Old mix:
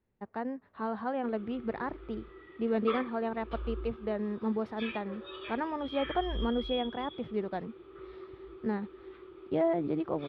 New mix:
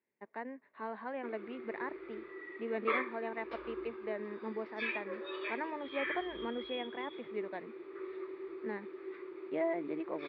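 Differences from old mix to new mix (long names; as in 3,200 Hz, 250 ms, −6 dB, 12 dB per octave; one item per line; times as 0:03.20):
background: remove transistor ladder low-pass 3,700 Hz, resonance 50%
master: add loudspeaker in its box 430–3,600 Hz, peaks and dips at 500 Hz −5 dB, 770 Hz −9 dB, 1,300 Hz −10 dB, 2,100 Hz +6 dB, 3,200 Hz −8 dB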